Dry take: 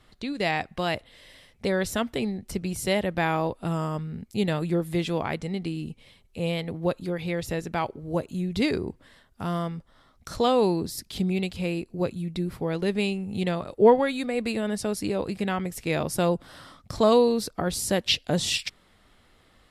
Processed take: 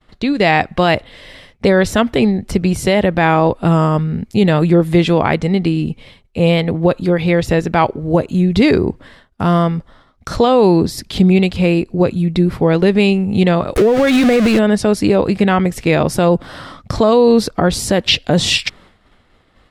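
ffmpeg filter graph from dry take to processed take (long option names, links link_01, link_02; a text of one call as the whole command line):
ffmpeg -i in.wav -filter_complex "[0:a]asettb=1/sr,asplit=3[link_01][link_02][link_03];[link_01]atrim=end=13.764[link_04];[link_02]atrim=start=13.76:end=14.59,asetpts=PTS-STARTPTS,afade=type=in:duration=0.004:curve=qsin,afade=type=out:start_time=0.826:duration=0.004:curve=qsin,aeval=exprs='val(0)+0.5*0.0708*sgn(val(0))':channel_layout=same,equalizer=frequency=900:width=4.6:gain=-12,acompressor=threshold=-23dB:ratio=16:attack=3.2:release=140:knee=1:detection=peak[link_05];[link_03]atrim=start=14.586[link_06];[link_04][link_05]acrossfade=duration=0.004:curve1=hsin:curve2=qsin[link_07];[link_07][link_06]acrossfade=duration=0.004:curve1=qsin:curve2=hsin,agate=range=-33dB:threshold=-51dB:ratio=3:detection=peak,aemphasis=mode=reproduction:type=50kf,alimiter=level_in=16.5dB:limit=-1dB:release=50:level=0:latency=1,volume=-1dB" out.wav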